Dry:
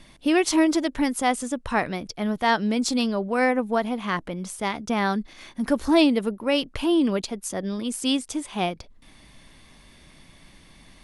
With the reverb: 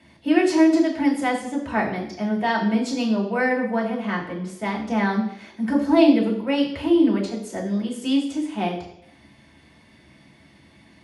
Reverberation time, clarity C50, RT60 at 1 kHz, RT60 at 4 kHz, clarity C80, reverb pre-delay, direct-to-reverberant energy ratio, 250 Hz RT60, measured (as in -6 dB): 0.75 s, 7.0 dB, 0.75 s, 0.75 s, 10.0 dB, 3 ms, -2.5 dB, 0.75 s